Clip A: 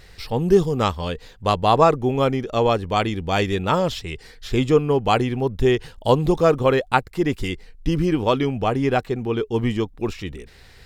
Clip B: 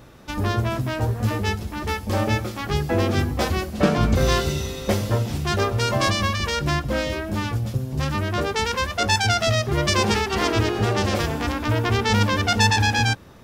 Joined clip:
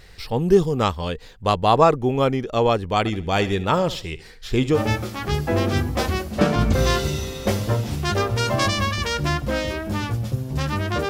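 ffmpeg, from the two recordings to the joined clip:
-filter_complex "[0:a]asettb=1/sr,asplit=3[a][b][c];[a]atrim=end=2.984[d];[b]atrim=start=2.98:end=4.8,asetpts=PTS-STARTPTS,afade=t=in:d=0.004:c=qsin,afade=t=out:st=1.816:d=0.004:c=qsin,aecho=1:1:73|146|219:0.158|0.0555|0.0194,atrim=end_sample=80262[e];[c]atrim=start=4.796[f];[d][e]acrossfade=d=0.004:c1=hsin:c2=qsin[g];[g][f]acrossfade=d=0.004:c1=qsin:c2=hsin,apad=whole_dur=11.09,atrim=end=11.09,atrim=end=4.8,asetpts=PTS-STARTPTS[h];[1:a]atrim=start=2.14:end=8.51,asetpts=PTS-STARTPTS[i];[h][i]acrossfade=d=0.08:c1=tri:c2=tri"

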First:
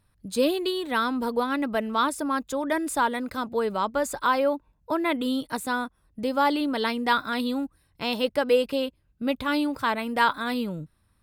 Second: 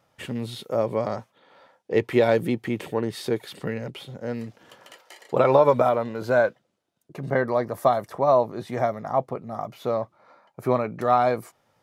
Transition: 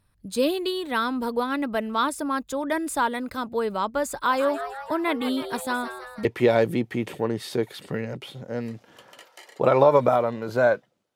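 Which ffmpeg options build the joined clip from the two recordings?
-filter_complex "[0:a]asplit=3[a][b][c];[a]afade=t=out:st=4.29:d=0.02[d];[b]asplit=7[e][f][g][h][i][j][k];[f]adelay=162,afreqshift=130,volume=-10.5dB[l];[g]adelay=324,afreqshift=260,volume=-15.5dB[m];[h]adelay=486,afreqshift=390,volume=-20.6dB[n];[i]adelay=648,afreqshift=520,volume=-25.6dB[o];[j]adelay=810,afreqshift=650,volume=-30.6dB[p];[k]adelay=972,afreqshift=780,volume=-35.7dB[q];[e][l][m][n][o][p][q]amix=inputs=7:normalize=0,afade=t=in:st=4.29:d=0.02,afade=t=out:st=6.25:d=0.02[r];[c]afade=t=in:st=6.25:d=0.02[s];[d][r][s]amix=inputs=3:normalize=0,apad=whole_dur=11.15,atrim=end=11.15,atrim=end=6.252[t];[1:a]atrim=start=1.978:end=6.88[u];[t][u]acrossfade=d=0.004:c1=hsin:c2=hsin"

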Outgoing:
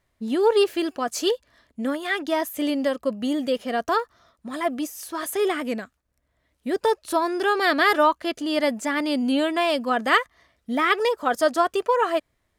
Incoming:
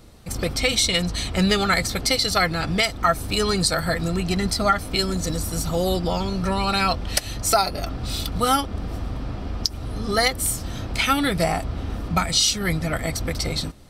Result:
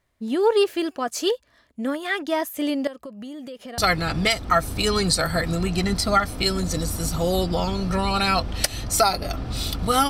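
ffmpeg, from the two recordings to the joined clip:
-filter_complex "[0:a]asettb=1/sr,asplit=3[a][b][c];[a]atrim=end=2.874[d];[b]atrim=start=2.87:end=3.78,asetpts=PTS-STARTPTS,afade=t=in:d=0.004:c=qsin,afade=t=out:st=0.906:d=0.004:c=qsin,acompressor=threshold=-34dB:ratio=6:attack=3.2:release=140:knee=1:detection=peak[e];[c]atrim=start=3.776[f];[d][e]acrossfade=d=0.004:c1=hsin:c2=qsin[g];[g][f]acrossfade=d=0.004:c1=qsin:c2=hsin,apad=whole_dur=10.09,atrim=end=10.09,atrim=end=3.782[h];[1:a]atrim=start=2.308:end=8.62[i];[h][i]acrossfade=d=0.004:c1=hsin:c2=hsin"

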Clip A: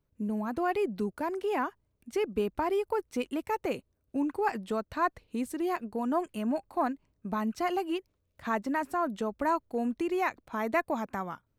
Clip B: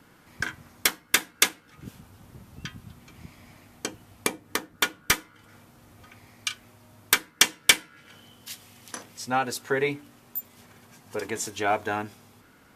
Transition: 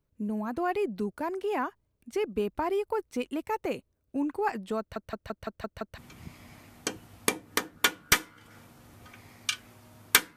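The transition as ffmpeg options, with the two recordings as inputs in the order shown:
-filter_complex "[0:a]apad=whole_dur=10.36,atrim=end=10.36,asplit=7[a][b][c][d][e][f][g];[a]atrim=end=4.962[h];[b]atrim=start=4.788:end=4.962[i];[c]atrim=start=4.788:end=4.962[j];[d]atrim=start=4.788:end=4.962[k];[e]atrim=start=4.788:end=4.962[l];[f]atrim=start=4.788:end=4.962[m];[g]atrim=start=4.788:end=4.962[n];[1:a]atrim=start=2.958:end=7.34[o];[h][i]acrossfade=d=0.004:c1=hsin:c2=hsin[p];[p][j]acrossfade=d=0.004:c1=hsin:c2=hsin[q];[q][k]acrossfade=d=0.004:c1=hsin:c2=hsin[r];[r][l]acrossfade=d=0.004:c1=hsin:c2=hsin[s];[s][m]acrossfade=d=0.004:c1=hsin:c2=hsin[t];[t][n]acrossfade=d=0.004:c1=hsin:c2=hsin[u];[u][o]acrossfade=d=0.004:c1=hsin:c2=hsin"

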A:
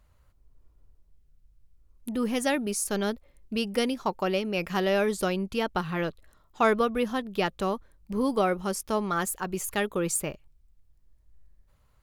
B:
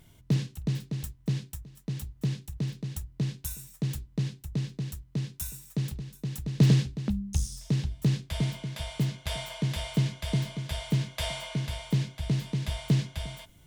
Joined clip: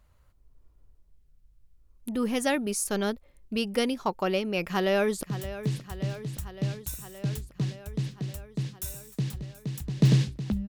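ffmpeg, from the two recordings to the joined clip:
-filter_complex "[0:a]apad=whole_dur=10.68,atrim=end=10.68,atrim=end=5.232[a];[1:a]atrim=start=1.808:end=7.26[b];[a][b]acrossfade=d=0.004:c1=hsin:c2=hsin,asplit=2[c][d];[d]afade=t=in:st=4.66:d=0.01,afade=t=out:st=5.23:d=0.01,aecho=0:1:570|1140|1710|2280|2850|3420|3990|4560|5130|5700|6270:0.211349|0.158512|0.118884|0.0891628|0.0668721|0.0501541|0.0376156|0.0282117|0.0211588|0.0158691|0.0119018[e];[c][e]amix=inputs=2:normalize=0"

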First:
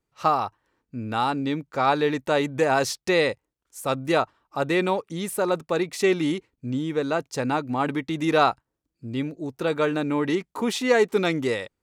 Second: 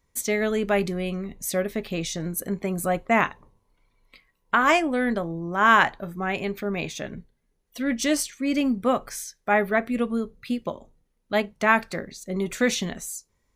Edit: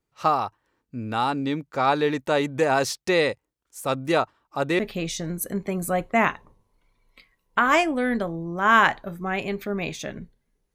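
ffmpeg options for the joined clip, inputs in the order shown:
-filter_complex "[0:a]apad=whole_dur=10.74,atrim=end=10.74,atrim=end=4.792[a];[1:a]atrim=start=1.748:end=7.7[b];[a][b]acrossfade=d=0.004:c1=hsin:c2=hsin"

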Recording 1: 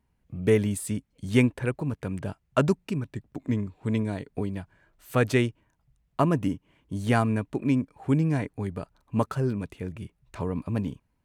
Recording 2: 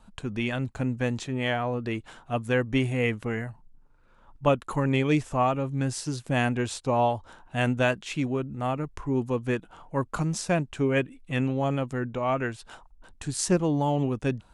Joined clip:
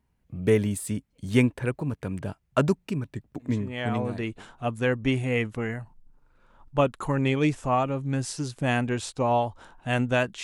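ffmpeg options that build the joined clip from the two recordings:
-filter_complex "[0:a]apad=whole_dur=10.43,atrim=end=10.43,atrim=end=4.47,asetpts=PTS-STARTPTS[a];[1:a]atrim=start=1.07:end=8.11,asetpts=PTS-STARTPTS[b];[a][b]acrossfade=d=1.08:c1=qsin:c2=qsin"

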